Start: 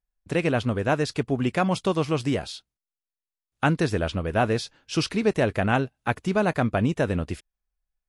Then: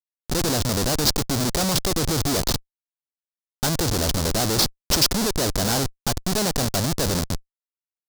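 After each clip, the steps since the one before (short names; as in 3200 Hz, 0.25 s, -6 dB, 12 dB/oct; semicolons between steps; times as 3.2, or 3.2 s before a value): Schmitt trigger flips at -30.5 dBFS; resonant high shelf 3500 Hz +9 dB, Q 1.5; gain +3 dB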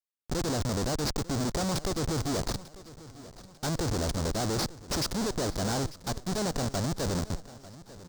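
tube stage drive 25 dB, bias 0.5; feedback echo 0.895 s, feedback 46%, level -18 dB; gain -2 dB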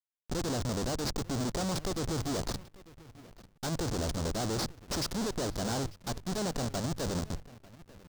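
notches 50/100/150 Hz; backlash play -42.5 dBFS; gain -3 dB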